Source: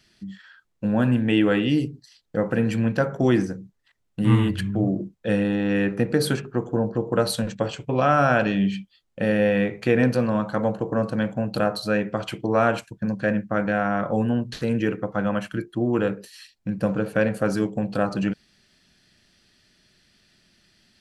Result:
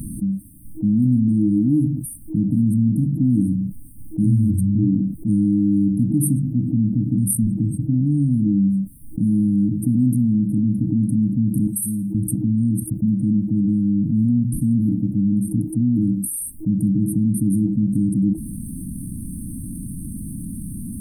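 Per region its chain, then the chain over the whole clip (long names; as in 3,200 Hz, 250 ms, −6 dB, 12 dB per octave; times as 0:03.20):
0:11.67–0:12.15: high-pass filter 1,300 Hz 6 dB per octave + comb filter 1.7 ms, depth 81% + flutter between parallel walls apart 9.5 metres, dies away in 0.37 s
whole clip: brick-wall band-stop 320–8,400 Hz; envelope flattener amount 70%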